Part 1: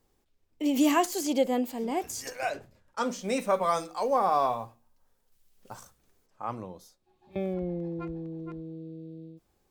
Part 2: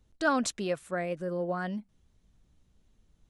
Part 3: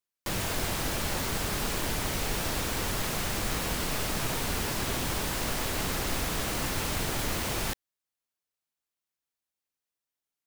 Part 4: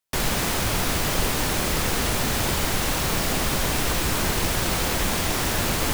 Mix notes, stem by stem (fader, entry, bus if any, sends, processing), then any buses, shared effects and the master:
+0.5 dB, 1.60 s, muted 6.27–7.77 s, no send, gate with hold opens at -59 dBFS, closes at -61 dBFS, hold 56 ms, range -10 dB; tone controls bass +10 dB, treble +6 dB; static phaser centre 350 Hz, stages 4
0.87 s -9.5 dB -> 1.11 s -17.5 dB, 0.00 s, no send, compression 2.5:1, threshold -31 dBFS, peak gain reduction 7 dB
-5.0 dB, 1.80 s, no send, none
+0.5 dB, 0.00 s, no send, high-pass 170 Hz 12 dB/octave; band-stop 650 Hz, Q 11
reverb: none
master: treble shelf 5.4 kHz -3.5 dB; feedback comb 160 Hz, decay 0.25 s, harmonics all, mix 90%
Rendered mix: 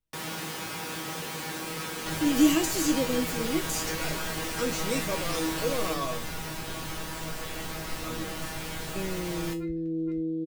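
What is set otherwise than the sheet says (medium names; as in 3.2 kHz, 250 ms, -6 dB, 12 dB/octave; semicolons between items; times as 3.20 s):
stem 1 +0.5 dB -> +11.0 dB; stem 3 -5.0 dB -> +5.5 dB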